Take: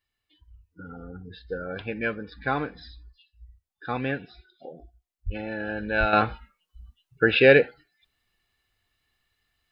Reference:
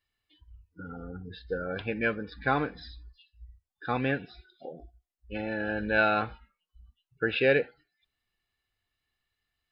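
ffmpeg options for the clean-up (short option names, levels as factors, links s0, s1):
-filter_complex "[0:a]asplit=3[s0][s1][s2];[s0]afade=t=out:st=5.25:d=0.02[s3];[s1]highpass=f=140:w=0.5412,highpass=f=140:w=1.3066,afade=t=in:st=5.25:d=0.02,afade=t=out:st=5.37:d=0.02[s4];[s2]afade=t=in:st=5.37:d=0.02[s5];[s3][s4][s5]amix=inputs=3:normalize=0,asplit=3[s6][s7][s8];[s6]afade=t=out:st=5.99:d=0.02[s9];[s7]highpass=f=140:w=0.5412,highpass=f=140:w=1.3066,afade=t=in:st=5.99:d=0.02,afade=t=out:st=6.11:d=0.02[s10];[s8]afade=t=in:st=6.11:d=0.02[s11];[s9][s10][s11]amix=inputs=3:normalize=0,asetnsamples=n=441:p=0,asendcmd='6.13 volume volume -8dB',volume=1"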